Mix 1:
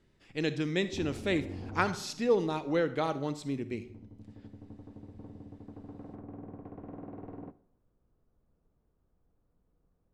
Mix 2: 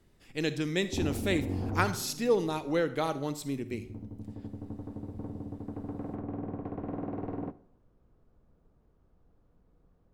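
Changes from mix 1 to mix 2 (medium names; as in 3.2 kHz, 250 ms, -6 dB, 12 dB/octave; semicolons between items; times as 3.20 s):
background +8.0 dB; master: remove distance through air 74 m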